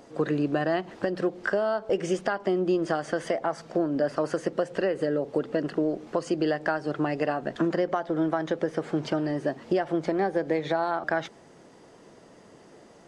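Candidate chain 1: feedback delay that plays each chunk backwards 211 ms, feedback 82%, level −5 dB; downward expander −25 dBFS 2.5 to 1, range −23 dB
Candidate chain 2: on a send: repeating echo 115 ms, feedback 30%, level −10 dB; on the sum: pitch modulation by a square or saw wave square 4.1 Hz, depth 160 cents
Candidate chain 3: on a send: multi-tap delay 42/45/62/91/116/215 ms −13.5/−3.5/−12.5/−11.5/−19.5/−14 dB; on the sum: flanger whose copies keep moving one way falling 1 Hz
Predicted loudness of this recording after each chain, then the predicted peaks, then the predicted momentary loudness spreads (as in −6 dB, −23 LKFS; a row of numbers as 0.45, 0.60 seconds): −25.5, −27.5, −31.0 LKFS; −9.5, −12.0, −16.0 dBFS; 3, 3, 4 LU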